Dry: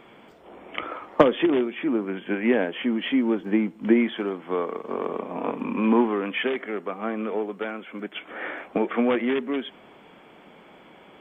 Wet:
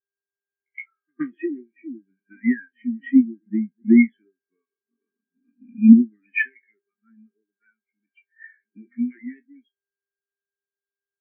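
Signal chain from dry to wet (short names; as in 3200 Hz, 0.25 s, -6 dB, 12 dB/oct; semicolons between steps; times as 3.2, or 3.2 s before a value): spectral trails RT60 0.36 s; low shelf 170 Hz +4.5 dB; pre-echo 0.12 s -13 dB; buzz 400 Hz, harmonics 4, -34 dBFS -8 dB/oct; Butterworth band-stop 710 Hz, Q 0.52; bell 1800 Hz +14 dB 1.7 oct; spectral expander 4:1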